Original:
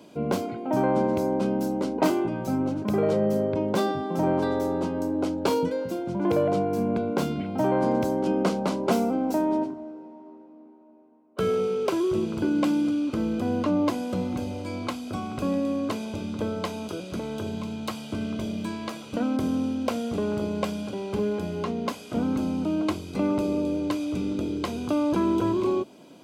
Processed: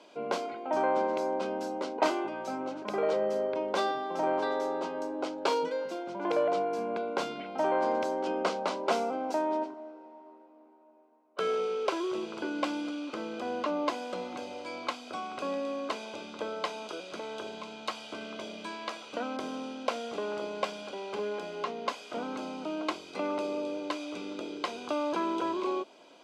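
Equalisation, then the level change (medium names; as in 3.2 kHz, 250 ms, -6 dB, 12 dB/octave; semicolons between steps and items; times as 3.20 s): band-pass 560–5800 Hz; 0.0 dB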